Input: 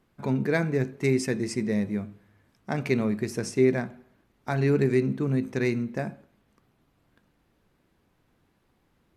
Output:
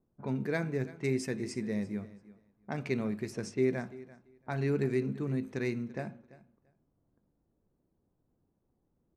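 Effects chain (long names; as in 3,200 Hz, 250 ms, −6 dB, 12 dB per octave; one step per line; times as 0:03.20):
low-pass that shuts in the quiet parts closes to 610 Hz, open at −24.5 dBFS
on a send: repeating echo 339 ms, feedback 17%, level −19 dB
on the sum: level −7.5 dB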